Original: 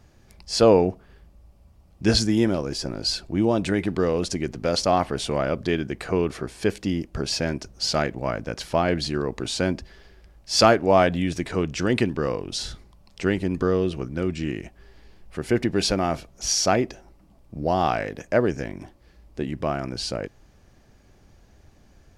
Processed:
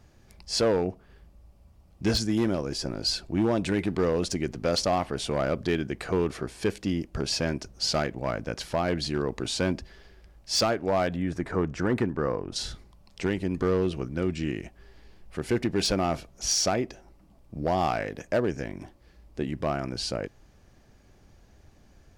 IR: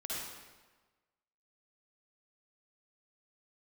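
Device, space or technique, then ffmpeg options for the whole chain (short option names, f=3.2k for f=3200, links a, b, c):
limiter into clipper: -filter_complex "[0:a]alimiter=limit=-11dB:level=0:latency=1:release=447,asoftclip=type=hard:threshold=-16dB,asettb=1/sr,asplit=3[a][b][c];[a]atrim=end=11.164[d];[b]atrim=start=11.16:end=12.56,asetpts=PTS-STARTPTS,afade=t=in:d=0.004:c=qsin,afade=t=out:st=1.396:d=0.004:c=qsin,highshelf=f=2.1k:t=q:w=1.5:g=-9[e];[c]atrim=start=12.556[f];[d][e]acrossfade=d=0.004:c1=hsin:c2=qsin[g];[g][f]acrossfade=d=0.004:c1=qsin:c2=hsin,volume=-2dB"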